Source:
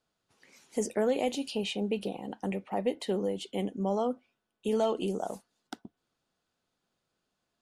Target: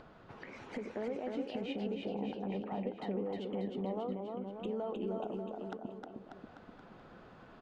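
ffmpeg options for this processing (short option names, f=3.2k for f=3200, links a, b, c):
-af "lowpass=1.6k,acompressor=threshold=-44dB:ratio=4,alimiter=level_in=15.5dB:limit=-24dB:level=0:latency=1:release=138,volume=-15.5dB,acompressor=mode=upward:threshold=-51dB:ratio=2.5,aecho=1:1:310|589|840.1|1066|1269:0.631|0.398|0.251|0.158|0.1,volume=9.5dB"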